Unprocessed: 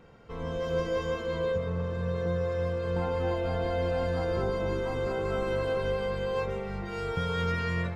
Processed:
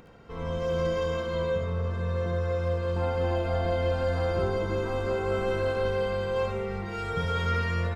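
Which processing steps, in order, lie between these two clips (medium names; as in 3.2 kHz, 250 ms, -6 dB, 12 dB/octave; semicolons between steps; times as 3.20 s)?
upward compressor, threshold -50 dBFS; early reflections 59 ms -7.5 dB, 72 ms -4 dB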